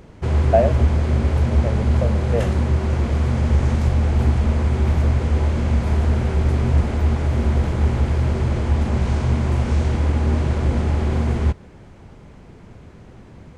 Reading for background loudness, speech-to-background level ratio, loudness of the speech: -20.0 LUFS, -5.0 dB, -25.0 LUFS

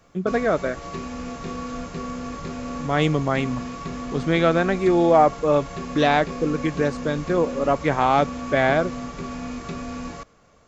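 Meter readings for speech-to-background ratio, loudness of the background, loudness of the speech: 11.5 dB, -33.0 LUFS, -21.5 LUFS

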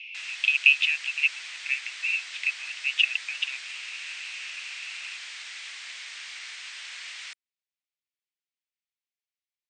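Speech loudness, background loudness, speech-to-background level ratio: -24.5 LUFS, -37.5 LUFS, 13.0 dB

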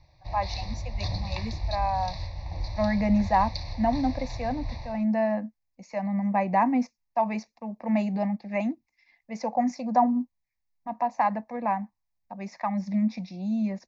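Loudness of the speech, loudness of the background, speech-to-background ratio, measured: -28.0 LUFS, -35.5 LUFS, 7.5 dB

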